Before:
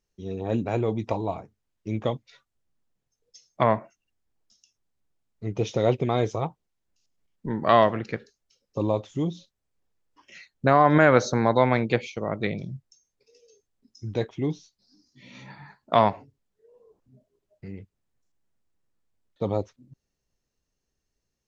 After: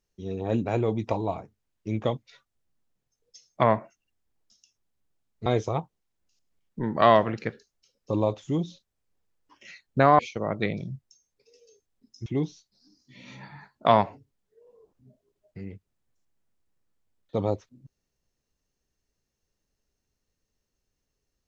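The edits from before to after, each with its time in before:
0:05.46–0:06.13: remove
0:10.86–0:12.00: remove
0:14.07–0:14.33: remove

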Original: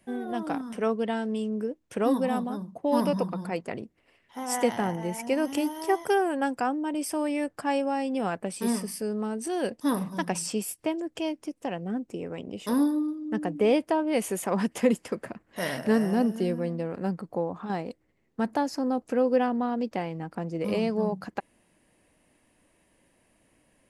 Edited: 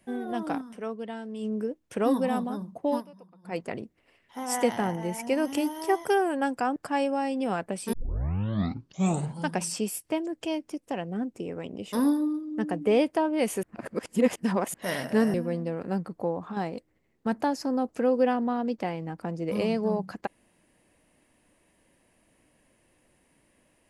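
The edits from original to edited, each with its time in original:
0:00.59–0:01.45: duck −8 dB, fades 0.38 s exponential
0:02.89–0:03.57: duck −24 dB, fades 0.14 s
0:06.76–0:07.50: remove
0:08.67: tape start 1.67 s
0:14.37–0:15.48: reverse
0:16.08–0:16.47: remove

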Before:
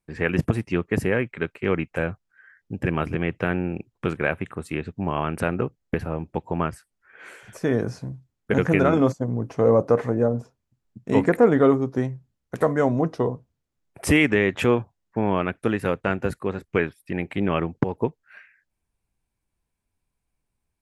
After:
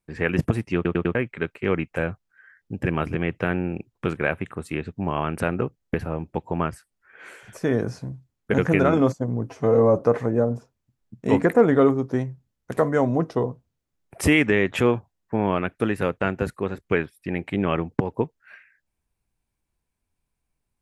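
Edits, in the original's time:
0:00.75: stutter in place 0.10 s, 4 plays
0:09.50–0:09.83: time-stretch 1.5×

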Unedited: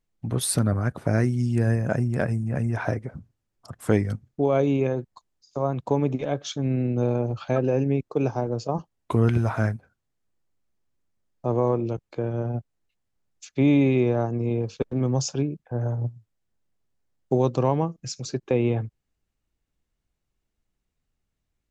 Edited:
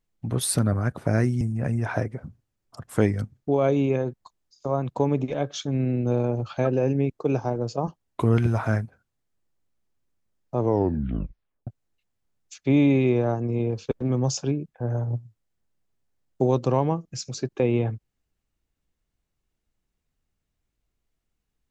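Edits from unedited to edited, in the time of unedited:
0:01.41–0:02.32: remove
0:11.51: tape stop 1.07 s

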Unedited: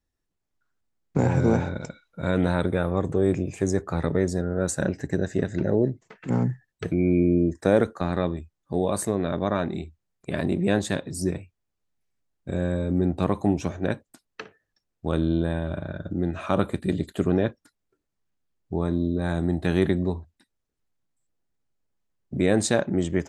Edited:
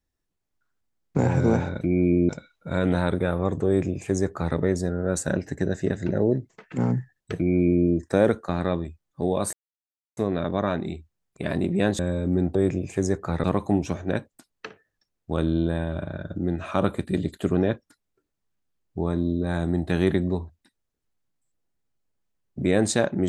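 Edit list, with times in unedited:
0:03.19–0:04.08: duplicate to 0:13.19
0:06.89–0:07.37: duplicate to 0:01.81
0:09.05: splice in silence 0.64 s
0:10.87–0:12.63: remove

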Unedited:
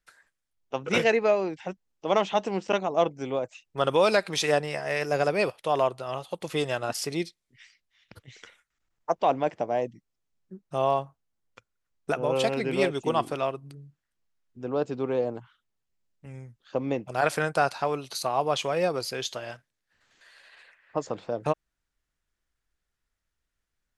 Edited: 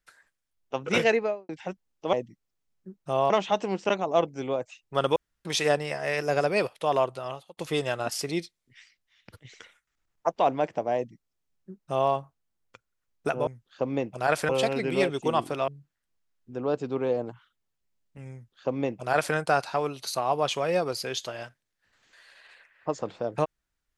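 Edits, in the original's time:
0:01.10–0:01.49: fade out and dull
0:03.99–0:04.28: fill with room tone
0:06.04–0:06.40: fade out
0:09.78–0:10.95: duplicate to 0:02.13
0:13.49–0:13.76: remove
0:16.41–0:17.43: duplicate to 0:12.30

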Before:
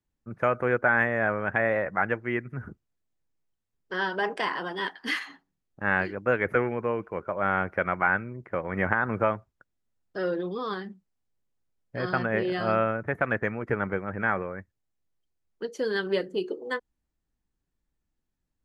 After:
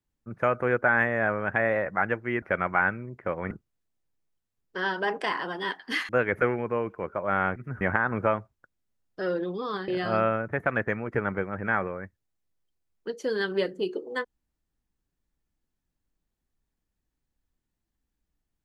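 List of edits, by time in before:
0:02.42–0:02.67: swap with 0:07.69–0:08.78
0:05.25–0:06.22: remove
0:10.85–0:12.43: remove

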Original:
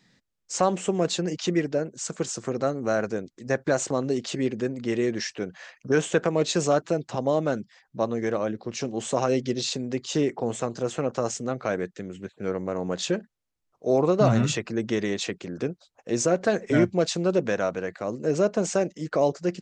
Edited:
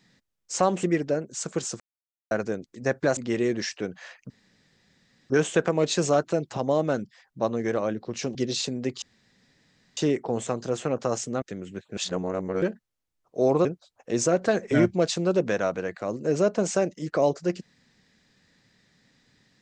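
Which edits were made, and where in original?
0:00.83–0:01.47: remove
0:02.44–0:02.95: silence
0:03.81–0:04.75: remove
0:05.88: splice in room tone 1.00 s
0:08.93–0:09.43: remove
0:10.10: splice in room tone 0.95 s
0:11.55–0:11.90: remove
0:12.45–0:13.10: reverse
0:14.13–0:15.64: remove

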